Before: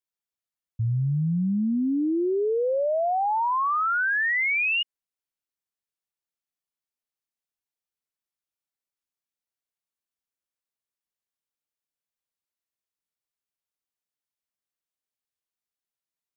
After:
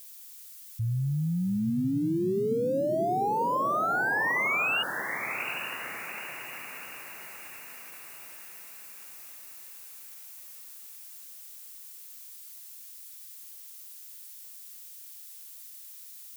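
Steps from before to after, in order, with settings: zero-crossing glitches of -37.5 dBFS; on a send: echo that smears into a reverb 831 ms, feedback 51%, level -7 dB; on the sum: trim -4 dB

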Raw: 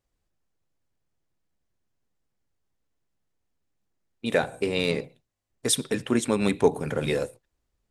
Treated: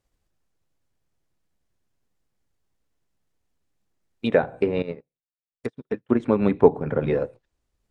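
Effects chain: low-pass that closes with the level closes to 1.4 kHz, closed at -24.5 dBFS; transient shaper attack +3 dB, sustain -2 dB; 4.82–6.20 s: upward expansion 2.5:1, over -43 dBFS; trim +3 dB

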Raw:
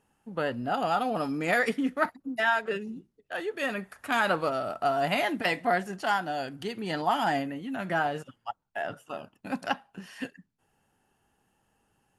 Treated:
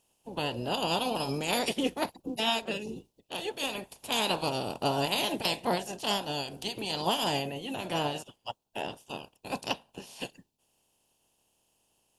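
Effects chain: spectral peaks clipped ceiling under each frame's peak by 20 dB; high-order bell 1.6 kHz -14 dB 1.1 oct

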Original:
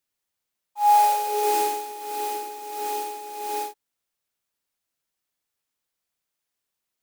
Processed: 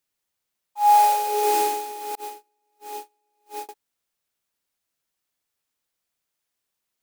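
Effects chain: 2.15–3.69 s: gate -26 dBFS, range -38 dB; trim +1.5 dB

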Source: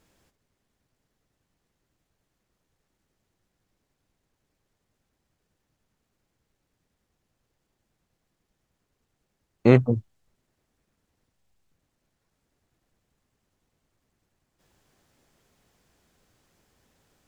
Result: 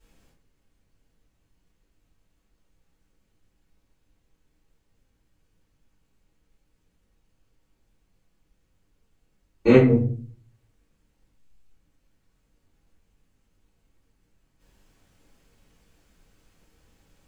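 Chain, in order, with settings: simulated room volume 34 m³, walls mixed, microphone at 2.8 m; trim -11 dB

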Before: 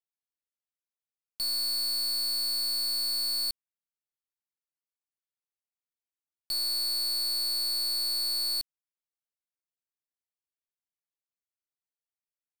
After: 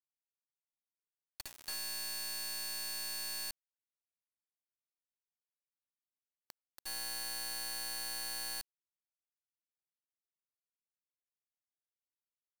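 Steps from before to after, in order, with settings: zero-crossing glitches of -45 dBFS; dynamic bell 6.9 kHz, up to +7 dB, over -46 dBFS, Q 0.85; in parallel at -5.5 dB: sample-rate reducer 15 kHz, jitter 0%; on the sum: compression 6:1, threshold -35 dBFS, peak gain reduction 11.5 dB; on a send: multi-tap echo 57/282/328 ms -8/-6/-18 dB; on the sum: time-frequency box 6.11–6.86 s, 2.2–7 kHz -7 dB; high-pass 560 Hz 12 dB/octave; treble shelf 2.9 kHz -11 dB; word length cut 6-bit, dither none; trim -3 dB

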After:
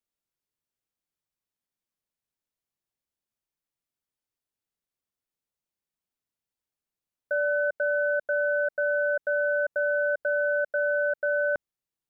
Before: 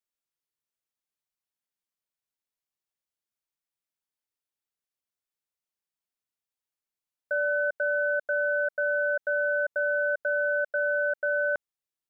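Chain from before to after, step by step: bass shelf 500 Hz +8.5 dB; trim -1.5 dB

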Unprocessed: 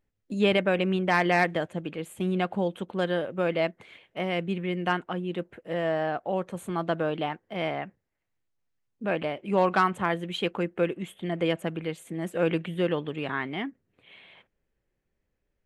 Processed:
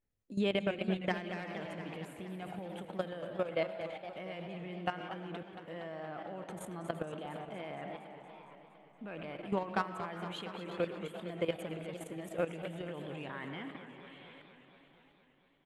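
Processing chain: algorithmic reverb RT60 0.91 s, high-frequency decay 0.7×, pre-delay 45 ms, DRR 12.5 dB; compression 2.5:1, threshold -28 dBFS, peak gain reduction 8 dB; phaser 0.13 Hz, delay 2 ms, feedback 22%; frequency-shifting echo 359 ms, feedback 44%, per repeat +140 Hz, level -16 dB; level held to a coarse grid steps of 14 dB; modulated delay 232 ms, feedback 71%, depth 166 cents, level -11 dB; trim -1.5 dB

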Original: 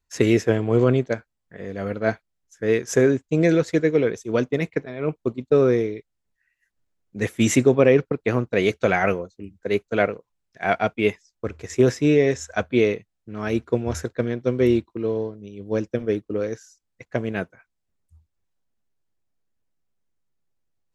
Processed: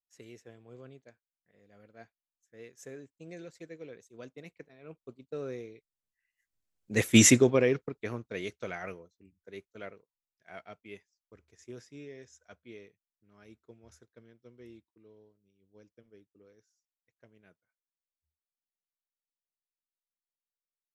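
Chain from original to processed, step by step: Doppler pass-by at 7.15 s, 12 m/s, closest 1.9 m; treble shelf 2.8 kHz +8.5 dB

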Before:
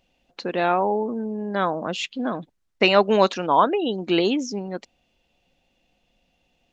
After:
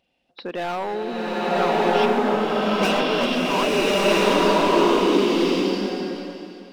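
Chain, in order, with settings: knee-point frequency compression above 3.4 kHz 1.5:1; high-pass 150 Hz 6 dB/octave; hard clipper -21 dBFS, distortion -6 dB; swelling reverb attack 1290 ms, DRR -9 dB; trim -2 dB

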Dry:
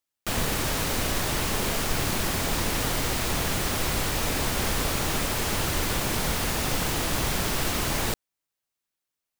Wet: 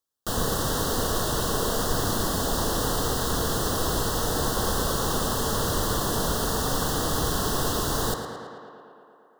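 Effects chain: Butterworth band-stop 2.3 kHz, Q 1.5; small resonant body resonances 460/1100 Hz, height 6 dB; tape echo 112 ms, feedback 80%, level -6 dB, low-pass 4.4 kHz

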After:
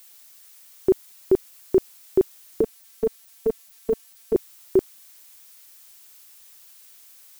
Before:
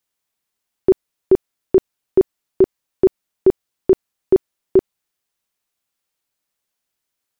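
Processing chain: added noise blue -45 dBFS; 2.61–4.35 s: robot voice 224 Hz; trim -5 dB

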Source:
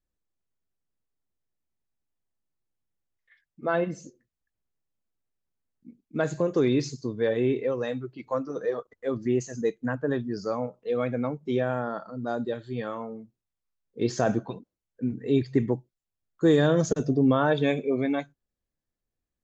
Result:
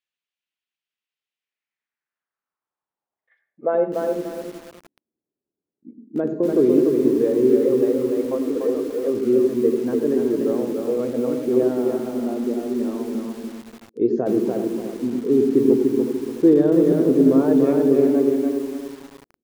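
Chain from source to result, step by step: in parallel at -2.5 dB: compression 16:1, threshold -30 dBFS, peak gain reduction 15 dB; 11.83–13.15 s: on the sum: cabinet simulation 230–5000 Hz, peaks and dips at 240 Hz +5 dB, 530 Hz -7 dB, 1.6 kHz -8 dB; delay 369 ms -10.5 dB; band-pass sweep 2.8 kHz -> 350 Hz, 1.32–4.32 s; on a send at -10 dB: reverberation, pre-delay 76 ms; on the sum: bit-crushed delay 291 ms, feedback 35%, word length 8-bit, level -3.5 dB; trim +7 dB

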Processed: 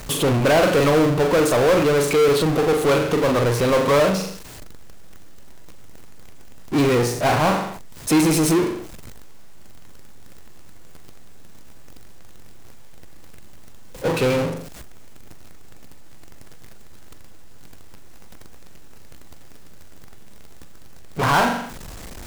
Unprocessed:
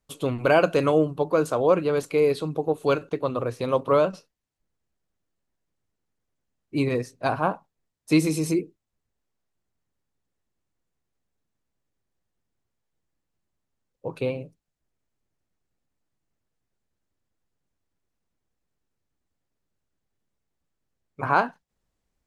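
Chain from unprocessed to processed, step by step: flutter echo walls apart 7.2 m, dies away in 0.28 s; power-law waveshaper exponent 0.35; trim -5 dB

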